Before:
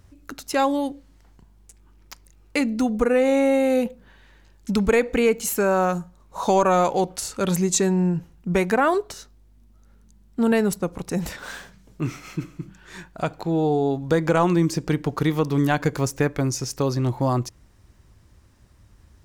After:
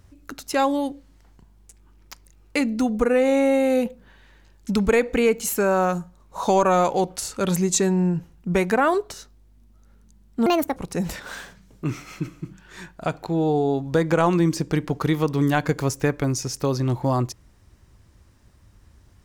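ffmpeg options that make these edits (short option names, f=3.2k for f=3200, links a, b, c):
-filter_complex "[0:a]asplit=3[a][b][c];[a]atrim=end=10.464[d];[b]atrim=start=10.46:end=10.93,asetpts=PTS-STARTPTS,asetrate=68355,aresample=44100,atrim=end_sample=13372,asetpts=PTS-STARTPTS[e];[c]atrim=start=10.926[f];[d][e]acrossfade=d=0.004:c1=hsin:c2=hsin[g];[g][f]acrossfade=d=0.004:c1=hsin:c2=hsin"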